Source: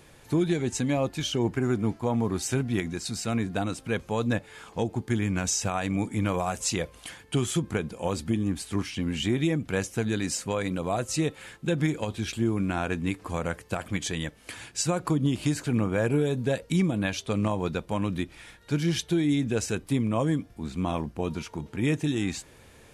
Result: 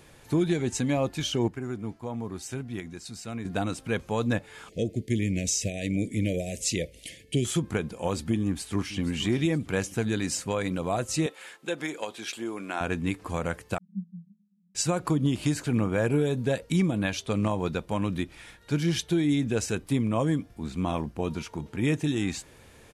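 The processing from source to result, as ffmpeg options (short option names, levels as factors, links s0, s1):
-filter_complex "[0:a]asettb=1/sr,asplit=3[s0][s1][s2];[s0]atrim=end=4.694[s3];[s1]atrim=start=4.69:end=7.45,asetpts=PTS-STARTPTS,afade=t=in:d=0.004:c=qsin,afade=t=out:st=2.756:d=0.004:c=qsin,asuperstop=centerf=1100:order=12:qfactor=0.87[s4];[s2]atrim=start=7.446[s5];[s3][s4]acrossfade=d=0.004:c1=hsin:c2=qsin[s6];[s6][s5]acrossfade=d=0.004:c1=qsin:c2=hsin,asplit=2[s7][s8];[s8]afade=t=in:st=8.43:d=0.01,afade=t=out:st=8.99:d=0.01,aecho=0:1:470|940|1410|1880|2350:0.199526|0.0997631|0.0498816|0.0249408|0.0124704[s9];[s7][s9]amix=inputs=2:normalize=0,asettb=1/sr,asplit=3[s10][s11][s12];[s10]atrim=end=11.264[s13];[s11]atrim=start=11.26:end=12.81,asetpts=PTS-STARTPTS,afade=t=in:d=0.004:c=qsin,afade=t=out:st=1.546:d=0.004:c=qsin,highpass=440[s14];[s12]atrim=start=12.806[s15];[s13][s14]acrossfade=d=0.004:c1=hsin:c2=qsin[s16];[s16][s15]acrossfade=d=0.004:c1=qsin:c2=hsin,asettb=1/sr,asplit=3[s17][s18][s19];[s17]atrim=end=13.784[s20];[s18]atrim=start=13.78:end=14.75,asetpts=PTS-STARTPTS,afade=t=in:d=0.004:c=qsin,afade=t=out:st=0.966:d=0.004:c=qsin,asuperpass=centerf=190:order=12:qfactor=4.7[s21];[s19]atrim=start=14.746[s22];[s20][s21]acrossfade=d=0.004:c1=hsin:c2=qsin[s23];[s23][s22]acrossfade=d=0.004:c1=qsin:c2=hsin,asplit=3[s24][s25][s26];[s24]atrim=end=1.482[s27];[s25]atrim=start=1.478:end=3.452,asetpts=PTS-STARTPTS,volume=0.398[s28];[s26]atrim=start=3.448[s29];[s27][s28]acrossfade=d=0.004:c1=hsin:c2=hsin[s30];[s30][s29]acrossfade=d=0.004:c1=hsin:c2=hsin"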